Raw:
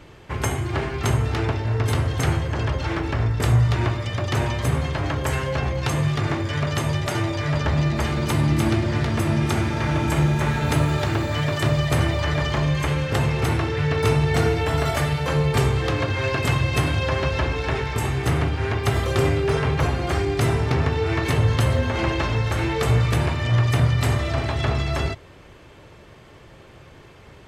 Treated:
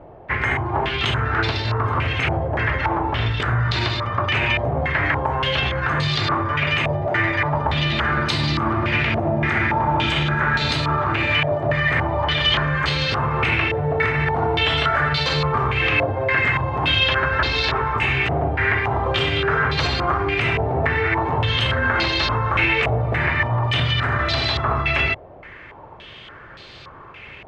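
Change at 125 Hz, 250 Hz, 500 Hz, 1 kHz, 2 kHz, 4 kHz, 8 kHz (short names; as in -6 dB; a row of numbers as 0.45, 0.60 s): -2.5, -2.0, +1.0, +6.5, +8.5, +9.0, -9.5 dB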